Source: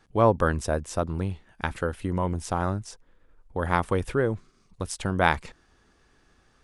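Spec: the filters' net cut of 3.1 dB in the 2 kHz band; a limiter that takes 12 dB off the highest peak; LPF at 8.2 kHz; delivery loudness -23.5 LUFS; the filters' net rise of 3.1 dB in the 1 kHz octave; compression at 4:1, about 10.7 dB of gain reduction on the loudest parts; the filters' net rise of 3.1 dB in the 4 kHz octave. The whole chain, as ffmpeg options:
-af "lowpass=8200,equalizer=f=1000:t=o:g=5.5,equalizer=f=2000:t=o:g=-8.5,equalizer=f=4000:t=o:g=6.5,acompressor=threshold=0.0501:ratio=4,volume=4.73,alimiter=limit=0.299:level=0:latency=1"

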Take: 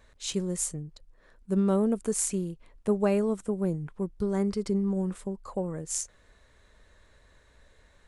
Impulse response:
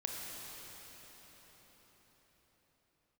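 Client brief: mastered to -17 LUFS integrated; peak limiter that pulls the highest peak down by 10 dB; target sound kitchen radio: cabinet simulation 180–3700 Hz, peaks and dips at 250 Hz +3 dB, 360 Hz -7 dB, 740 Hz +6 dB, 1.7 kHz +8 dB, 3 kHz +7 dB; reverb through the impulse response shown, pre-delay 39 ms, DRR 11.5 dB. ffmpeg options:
-filter_complex "[0:a]alimiter=limit=0.0794:level=0:latency=1,asplit=2[s0][s1];[1:a]atrim=start_sample=2205,adelay=39[s2];[s1][s2]afir=irnorm=-1:irlink=0,volume=0.211[s3];[s0][s3]amix=inputs=2:normalize=0,highpass=180,equalizer=f=250:t=q:w=4:g=3,equalizer=f=360:t=q:w=4:g=-7,equalizer=f=740:t=q:w=4:g=6,equalizer=f=1700:t=q:w=4:g=8,equalizer=f=3000:t=q:w=4:g=7,lowpass=f=3700:w=0.5412,lowpass=f=3700:w=1.3066,volume=7.5"

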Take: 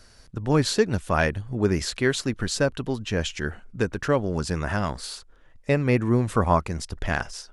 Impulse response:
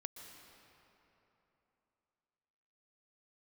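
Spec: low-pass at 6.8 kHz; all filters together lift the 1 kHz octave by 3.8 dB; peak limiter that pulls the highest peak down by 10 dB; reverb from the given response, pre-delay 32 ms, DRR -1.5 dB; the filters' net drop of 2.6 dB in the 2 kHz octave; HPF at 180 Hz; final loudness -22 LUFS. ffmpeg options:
-filter_complex "[0:a]highpass=180,lowpass=6800,equalizer=f=1000:t=o:g=6,equalizer=f=2000:t=o:g=-6,alimiter=limit=0.211:level=0:latency=1,asplit=2[s0][s1];[1:a]atrim=start_sample=2205,adelay=32[s2];[s1][s2]afir=irnorm=-1:irlink=0,volume=1.78[s3];[s0][s3]amix=inputs=2:normalize=0,volume=1.33"

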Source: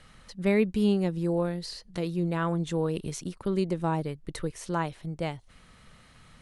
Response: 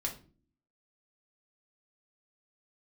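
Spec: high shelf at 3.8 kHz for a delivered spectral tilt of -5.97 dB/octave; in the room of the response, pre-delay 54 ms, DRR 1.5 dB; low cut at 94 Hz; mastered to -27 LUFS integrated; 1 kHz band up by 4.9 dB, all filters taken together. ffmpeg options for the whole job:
-filter_complex "[0:a]highpass=94,equalizer=f=1000:t=o:g=5.5,highshelf=f=3800:g=3.5,asplit=2[s0][s1];[1:a]atrim=start_sample=2205,adelay=54[s2];[s1][s2]afir=irnorm=-1:irlink=0,volume=0.668[s3];[s0][s3]amix=inputs=2:normalize=0,volume=0.944"

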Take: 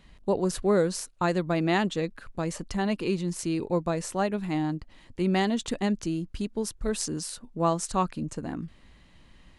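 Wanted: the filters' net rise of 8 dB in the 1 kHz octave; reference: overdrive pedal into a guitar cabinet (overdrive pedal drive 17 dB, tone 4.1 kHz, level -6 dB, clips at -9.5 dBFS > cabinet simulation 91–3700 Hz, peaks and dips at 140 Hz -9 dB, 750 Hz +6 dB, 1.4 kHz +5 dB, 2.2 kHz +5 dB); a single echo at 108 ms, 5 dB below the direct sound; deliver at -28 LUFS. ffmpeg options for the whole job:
-filter_complex "[0:a]equalizer=f=1000:t=o:g=5.5,aecho=1:1:108:0.562,asplit=2[s0][s1];[s1]highpass=f=720:p=1,volume=7.08,asoftclip=type=tanh:threshold=0.335[s2];[s0][s2]amix=inputs=2:normalize=0,lowpass=f=4100:p=1,volume=0.501,highpass=91,equalizer=f=140:t=q:w=4:g=-9,equalizer=f=750:t=q:w=4:g=6,equalizer=f=1400:t=q:w=4:g=5,equalizer=f=2200:t=q:w=4:g=5,lowpass=f=3700:w=0.5412,lowpass=f=3700:w=1.3066,volume=0.422"

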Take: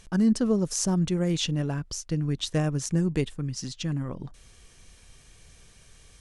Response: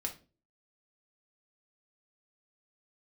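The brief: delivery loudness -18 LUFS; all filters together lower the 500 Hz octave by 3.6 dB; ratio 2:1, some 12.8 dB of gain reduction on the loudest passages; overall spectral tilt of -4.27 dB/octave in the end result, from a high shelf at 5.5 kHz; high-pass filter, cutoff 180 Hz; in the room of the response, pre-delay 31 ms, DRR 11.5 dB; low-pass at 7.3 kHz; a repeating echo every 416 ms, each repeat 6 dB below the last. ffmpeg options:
-filter_complex "[0:a]highpass=180,lowpass=7300,equalizer=f=500:t=o:g=-4.5,highshelf=f=5500:g=4,acompressor=threshold=0.00562:ratio=2,aecho=1:1:416|832|1248|1664|2080|2496:0.501|0.251|0.125|0.0626|0.0313|0.0157,asplit=2[s0][s1];[1:a]atrim=start_sample=2205,adelay=31[s2];[s1][s2]afir=irnorm=-1:irlink=0,volume=0.251[s3];[s0][s3]amix=inputs=2:normalize=0,volume=11.2"

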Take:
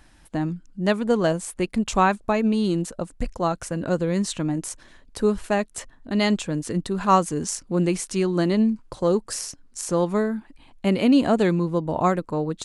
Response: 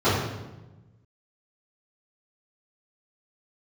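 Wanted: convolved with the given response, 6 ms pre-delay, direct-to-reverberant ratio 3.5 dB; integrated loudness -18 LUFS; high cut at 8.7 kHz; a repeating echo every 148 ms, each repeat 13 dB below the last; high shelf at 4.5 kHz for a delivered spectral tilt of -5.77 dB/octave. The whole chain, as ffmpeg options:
-filter_complex "[0:a]lowpass=8700,highshelf=f=4500:g=7,aecho=1:1:148|296|444:0.224|0.0493|0.0108,asplit=2[s0][s1];[1:a]atrim=start_sample=2205,adelay=6[s2];[s1][s2]afir=irnorm=-1:irlink=0,volume=0.0708[s3];[s0][s3]amix=inputs=2:normalize=0,volume=1.19"

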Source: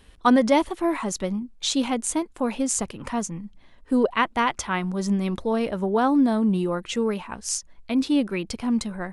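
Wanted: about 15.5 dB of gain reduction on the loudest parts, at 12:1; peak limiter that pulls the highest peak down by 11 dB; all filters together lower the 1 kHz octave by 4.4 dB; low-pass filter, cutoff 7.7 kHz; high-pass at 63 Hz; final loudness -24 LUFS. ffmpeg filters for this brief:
-af "highpass=63,lowpass=7700,equalizer=f=1000:t=o:g=-5.5,acompressor=threshold=0.0282:ratio=12,volume=4.73,alimiter=limit=0.178:level=0:latency=1"

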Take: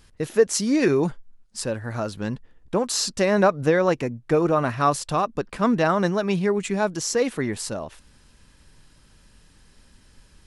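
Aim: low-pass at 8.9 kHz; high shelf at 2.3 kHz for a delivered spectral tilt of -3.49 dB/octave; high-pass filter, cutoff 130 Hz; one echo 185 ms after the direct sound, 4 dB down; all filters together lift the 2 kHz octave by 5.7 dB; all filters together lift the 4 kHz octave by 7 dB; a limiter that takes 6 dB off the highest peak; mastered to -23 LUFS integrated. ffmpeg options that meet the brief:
-af "highpass=130,lowpass=8900,equalizer=f=2000:t=o:g=4,highshelf=f=2300:g=5.5,equalizer=f=4000:t=o:g=3,alimiter=limit=0.316:level=0:latency=1,aecho=1:1:185:0.631,volume=0.841"

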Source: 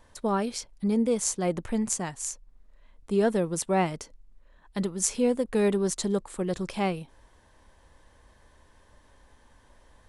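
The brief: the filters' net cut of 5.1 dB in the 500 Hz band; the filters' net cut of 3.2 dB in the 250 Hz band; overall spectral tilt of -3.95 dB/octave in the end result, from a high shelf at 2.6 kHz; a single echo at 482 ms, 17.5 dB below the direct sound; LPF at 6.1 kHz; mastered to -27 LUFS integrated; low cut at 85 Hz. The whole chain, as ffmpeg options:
-af "highpass=85,lowpass=6100,equalizer=f=250:t=o:g=-3,equalizer=f=500:t=o:g=-5.5,highshelf=f=2600:g=4,aecho=1:1:482:0.133,volume=1.58"

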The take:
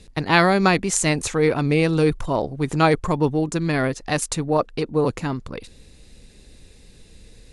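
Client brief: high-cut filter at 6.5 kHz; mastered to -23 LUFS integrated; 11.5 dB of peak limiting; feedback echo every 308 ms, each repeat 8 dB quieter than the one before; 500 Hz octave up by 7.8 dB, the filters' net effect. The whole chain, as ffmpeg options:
-af "lowpass=6500,equalizer=f=500:t=o:g=9,alimiter=limit=0.266:level=0:latency=1,aecho=1:1:308|616|924|1232|1540:0.398|0.159|0.0637|0.0255|0.0102,volume=0.794"

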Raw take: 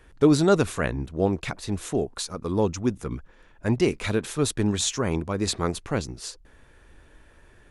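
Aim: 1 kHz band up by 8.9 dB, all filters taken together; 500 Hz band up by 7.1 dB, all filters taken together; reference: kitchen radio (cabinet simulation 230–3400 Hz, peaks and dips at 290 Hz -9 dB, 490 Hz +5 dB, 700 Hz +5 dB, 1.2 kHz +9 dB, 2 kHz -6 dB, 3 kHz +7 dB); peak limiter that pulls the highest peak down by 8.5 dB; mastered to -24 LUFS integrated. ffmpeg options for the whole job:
-af "equalizer=f=500:t=o:g=5.5,equalizer=f=1000:t=o:g=3.5,alimiter=limit=0.266:level=0:latency=1,highpass=230,equalizer=f=290:t=q:w=4:g=-9,equalizer=f=490:t=q:w=4:g=5,equalizer=f=700:t=q:w=4:g=5,equalizer=f=1200:t=q:w=4:g=9,equalizer=f=2000:t=q:w=4:g=-6,equalizer=f=3000:t=q:w=4:g=7,lowpass=f=3400:w=0.5412,lowpass=f=3400:w=1.3066,volume=1.06"

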